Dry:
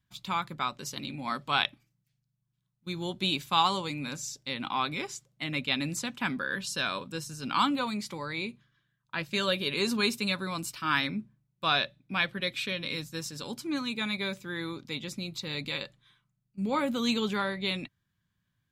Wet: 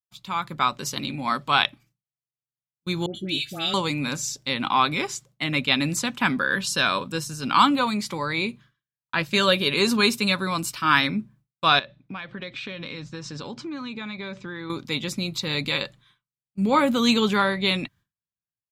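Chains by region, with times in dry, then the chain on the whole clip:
3.06–3.74 s: Butterworth band-stop 1 kHz, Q 1.1 + feedback comb 330 Hz, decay 0.16 s + phase dispersion highs, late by 91 ms, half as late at 1.4 kHz
11.79–14.70 s: low-pass 6.9 kHz 24 dB/octave + treble shelf 4.4 kHz -11 dB + compression 8:1, threshold -39 dBFS
whole clip: expander -55 dBFS; peaking EQ 1.1 kHz +2.5 dB; level rider gain up to 10 dB; trim -1.5 dB

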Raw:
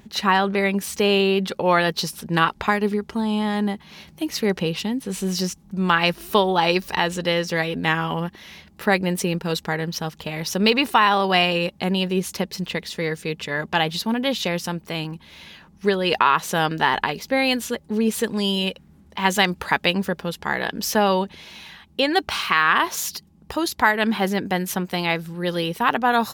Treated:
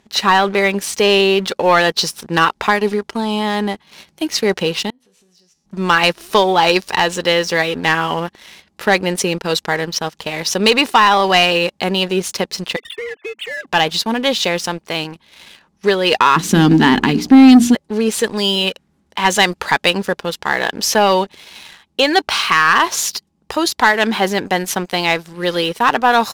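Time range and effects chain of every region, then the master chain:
4.90–5.66 s: compression 10:1, threshold -37 dBFS + feedback comb 82 Hz, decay 0.8 s, mix 70% + decimation joined by straight lines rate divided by 2×
12.76–13.67 s: formants replaced by sine waves + treble shelf 2.2 kHz +7.5 dB + compression 8:1, threshold -29 dBFS
16.36–17.75 s: resonant low shelf 400 Hz +13.5 dB, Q 3 + hum notches 60/120/180/240/300/360/420/480/540 Hz
whole clip: Bessel low-pass 7.8 kHz, order 2; tone controls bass -9 dB, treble +4 dB; waveshaping leveller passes 2

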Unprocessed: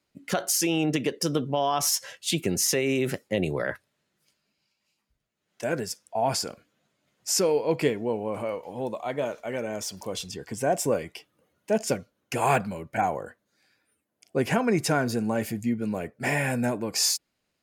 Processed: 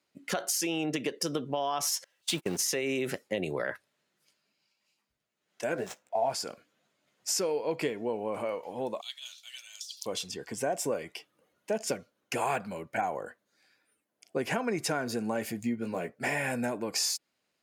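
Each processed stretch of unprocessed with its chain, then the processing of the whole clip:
2.04–2.62 s: jump at every zero crossing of -31.5 dBFS + gate -27 dBFS, range -38 dB + band-stop 6.9 kHz, Q 28
5.74–6.33 s: median filter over 9 samples + peaking EQ 660 Hz +7 dB 0.56 oct + doubling 16 ms -7.5 dB
9.01–10.06 s: resonant high shelf 2.8 kHz +9 dB, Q 3 + compressor with a negative ratio -28 dBFS, ratio -0.5 + ladder high-pass 2 kHz, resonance 30%
15.61–16.15 s: median filter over 3 samples + doubling 17 ms -6 dB
whole clip: high-pass 290 Hz 6 dB/octave; treble shelf 11 kHz -4 dB; compression 3:1, threshold -28 dBFS

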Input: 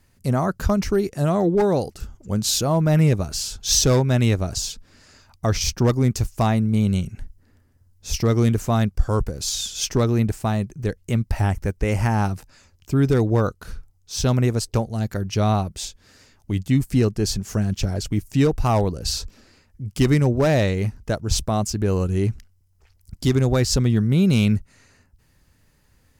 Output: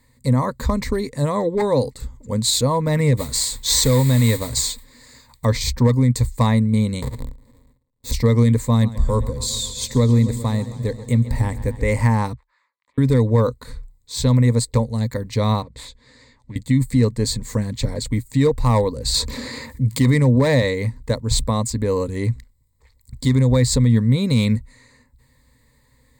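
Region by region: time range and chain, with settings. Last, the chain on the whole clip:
3.17–5.45 s: treble shelf 4.2 kHz +5.5 dB + modulation noise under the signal 14 dB
7.02–8.12 s: square wave that keeps the level + gate with hold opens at -44 dBFS, closes at -54 dBFS + peaking EQ 2.1 kHz -6.5 dB 2.6 oct
8.65–11.83 s: peaking EQ 1.5 kHz -4.5 dB 2.7 oct + modulated delay 134 ms, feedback 75%, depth 108 cents, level -16 dB
12.33–12.98 s: compression 4:1, threshold -42 dBFS + ladder band-pass 1.4 kHz, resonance 45% + loudspeaker Doppler distortion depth 0.79 ms
15.62–16.56 s: self-modulated delay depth 0.2 ms + low-pass 6 kHz + compression 3:1, threshold -35 dBFS
19.14–20.62 s: high-pass 79 Hz + band-stop 7.7 kHz, Q 18 + level flattener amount 50%
whole clip: rippled EQ curve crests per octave 1, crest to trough 15 dB; peak limiter -7.5 dBFS

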